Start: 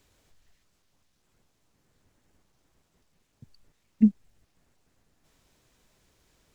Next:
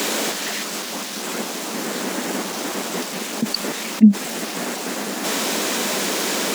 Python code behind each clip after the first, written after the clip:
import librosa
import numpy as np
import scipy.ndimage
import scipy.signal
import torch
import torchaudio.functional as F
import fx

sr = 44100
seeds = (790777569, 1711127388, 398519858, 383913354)

y = scipy.signal.sosfilt(scipy.signal.ellip(4, 1.0, 50, 200.0, 'highpass', fs=sr, output='sos'), x)
y = fx.env_flatten(y, sr, amount_pct=70)
y = y * librosa.db_to_amplitude(8.0)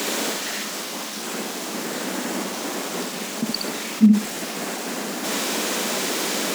y = fx.echo_feedback(x, sr, ms=67, feedback_pct=26, wet_db=-4.5)
y = y * librosa.db_to_amplitude(-3.5)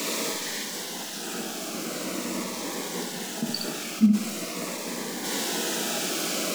y = fx.room_shoebox(x, sr, seeds[0], volume_m3=190.0, walls='furnished', distance_m=0.66)
y = fx.notch_cascade(y, sr, direction='falling', hz=0.44)
y = y * librosa.db_to_amplitude(-3.5)